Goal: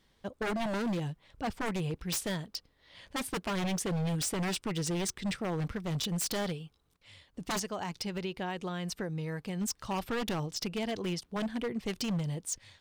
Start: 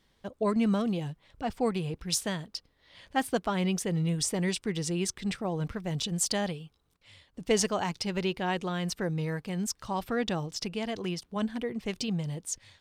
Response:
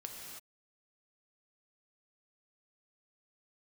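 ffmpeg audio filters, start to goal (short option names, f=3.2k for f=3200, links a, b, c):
-filter_complex "[0:a]asplit=3[a][b][c];[a]afade=t=out:st=7.58:d=0.02[d];[b]acompressor=threshold=-32dB:ratio=12,afade=t=in:st=7.58:d=0.02,afade=t=out:st=9.6:d=0.02[e];[c]afade=t=in:st=9.6:d=0.02[f];[d][e][f]amix=inputs=3:normalize=0,aeval=exprs='0.0447*(abs(mod(val(0)/0.0447+3,4)-2)-1)':c=same"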